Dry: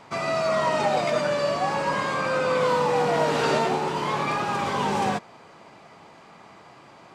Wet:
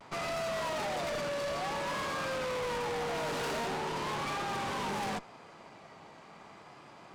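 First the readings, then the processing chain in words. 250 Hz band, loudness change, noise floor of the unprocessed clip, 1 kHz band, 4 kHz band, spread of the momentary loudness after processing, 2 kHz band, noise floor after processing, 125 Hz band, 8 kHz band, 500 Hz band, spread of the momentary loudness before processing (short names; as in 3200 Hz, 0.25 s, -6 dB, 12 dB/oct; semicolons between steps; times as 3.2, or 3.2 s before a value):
-10.5 dB, -10.5 dB, -50 dBFS, -11.0 dB, -6.5 dB, 19 LU, -8.5 dB, -54 dBFS, -10.5 dB, -5.0 dB, -11.5 dB, 4 LU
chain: tube stage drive 33 dB, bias 0.7; vibrato 0.62 Hz 41 cents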